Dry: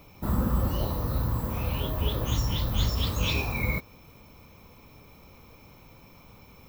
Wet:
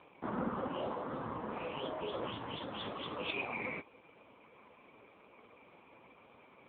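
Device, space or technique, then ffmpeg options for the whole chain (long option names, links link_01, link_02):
telephone: -af "highpass=320,lowpass=3100,asoftclip=type=tanh:threshold=-26dB,volume=1.5dB" -ar 8000 -c:a libopencore_amrnb -b:a 4750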